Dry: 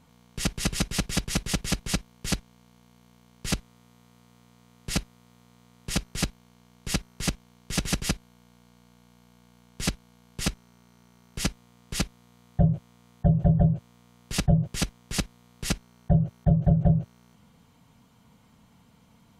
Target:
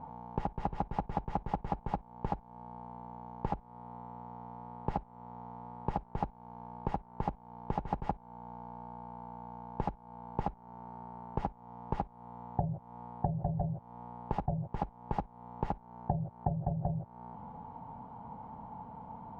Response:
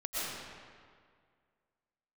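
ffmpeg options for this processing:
-af "alimiter=limit=-18.5dB:level=0:latency=1:release=414,acompressor=threshold=-39dB:ratio=6,lowpass=frequency=860:width_type=q:width=9.8,volume=7dB"

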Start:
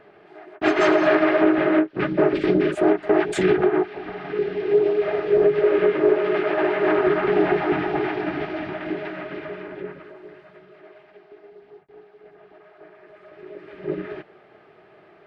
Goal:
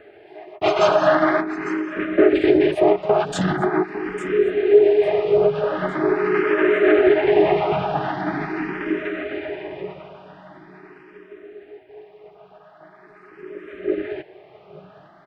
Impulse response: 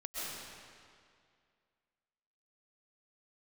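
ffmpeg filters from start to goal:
-filter_complex "[0:a]asettb=1/sr,asplit=3[link_01][link_02][link_03];[link_01]atrim=end=1.404[link_04];[link_02]atrim=start=1.4:end=2.18,asetpts=PTS-STARTPTS,afade=type=in:duration=0.004:curve=qsin,afade=type=out:start_time=0.776:duration=0.004:curve=qsin,acompressor=threshold=-27dB:ratio=8[link_05];[link_03]atrim=start=2.176[link_06];[link_04][link_05]acrossfade=duration=0.004:curve1=hsin:curve2=qsin[link_07];[link_07][link_06]acrossfade=duration=0.004:curve1=qsin:curve2=hsin,aecho=1:1:853|1706|2559|3412:0.188|0.0829|0.0365|0.016,asplit=2[link_08][link_09];[link_09]afreqshift=0.43[link_10];[link_08][link_10]amix=inputs=2:normalize=1,volume=5.5dB"

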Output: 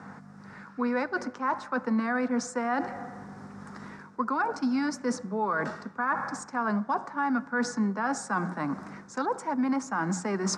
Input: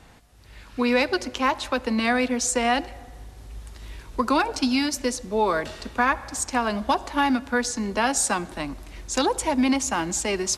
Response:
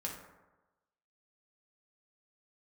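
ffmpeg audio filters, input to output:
-af "aeval=exprs='val(0)+0.00355*(sin(2*PI*50*n/s)+sin(2*PI*2*50*n/s)/2+sin(2*PI*3*50*n/s)/3+sin(2*PI*4*50*n/s)/4+sin(2*PI*5*50*n/s)/5)':channel_layout=same,highshelf=frequency=2100:width_type=q:width=3:gain=-12,areverse,acompressor=threshold=-33dB:ratio=4,areverse,highpass=frequency=140:width=0.5412,highpass=frequency=140:width=1.3066,equalizer=frequency=190:width_type=q:width=4:gain=8,equalizer=frequency=350:width_type=q:width=4:gain=-5,equalizer=frequency=610:width_type=q:width=4:gain=-5,equalizer=frequency=1600:width_type=q:width=4:gain=-3,equalizer=frequency=5300:width_type=q:width=4:gain=5,lowpass=frequency=8600:width=0.5412,lowpass=frequency=8600:width=1.3066,bandreject=frequency=60:width_type=h:width=6,bandreject=frequency=120:width_type=h:width=6,bandreject=frequency=180:width_type=h:width=6,volume=6dB"

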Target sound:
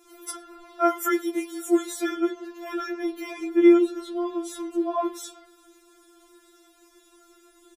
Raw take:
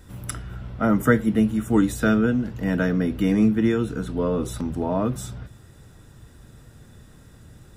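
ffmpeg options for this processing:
ffmpeg -i in.wav -filter_complex "[0:a]highpass=40,asettb=1/sr,asplit=3[link_01][link_02][link_03];[link_01]atrim=end=0.614[link_04];[link_02]atrim=start=0.61:end=1.87,asetpts=PTS-STARTPTS,afade=type=in:duration=0.004:curve=qsin,afade=type=out:start_time=1.256:duration=0.004:curve=qsin,bass=frequency=250:gain=-8,treble=frequency=4000:gain=7[link_05];[link_03]atrim=start=1.866[link_06];[link_04][link_05]acrossfade=duration=0.004:curve1=hsin:curve2=qsin[link_07];[link_07][link_06]acrossfade=duration=0.004:curve1=qsin:curve2=hsin,asplit=2[link_08][link_09];[link_09]adelay=105,volume=-27dB,highshelf=frequency=4000:gain=-2.36[link_10];[link_08][link_10]amix=inputs=2:normalize=0,afftfilt=real='re*4*eq(mod(b,16),0)':imag='im*4*eq(mod(b,16),0)':win_size=2048:overlap=0.75,volume=1.5dB" out.wav

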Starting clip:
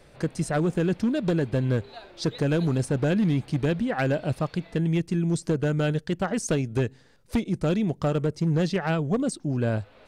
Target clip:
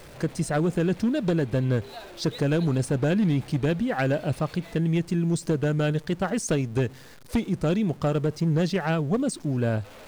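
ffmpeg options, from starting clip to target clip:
ffmpeg -i in.wav -af "aeval=exprs='val(0)+0.5*0.00668*sgn(val(0))':channel_layout=same" out.wav

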